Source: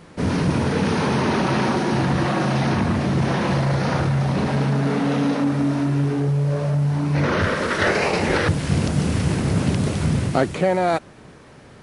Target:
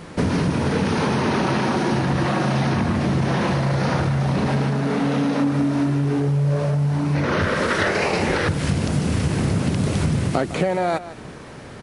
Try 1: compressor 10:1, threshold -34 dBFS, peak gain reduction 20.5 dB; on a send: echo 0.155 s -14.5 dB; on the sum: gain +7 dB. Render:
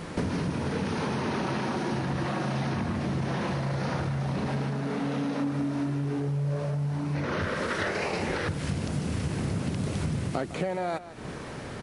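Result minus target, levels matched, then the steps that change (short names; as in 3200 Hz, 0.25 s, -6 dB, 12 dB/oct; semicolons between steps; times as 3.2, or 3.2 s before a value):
compressor: peak gain reduction +9 dB
change: compressor 10:1, threshold -24 dBFS, peak gain reduction 11.5 dB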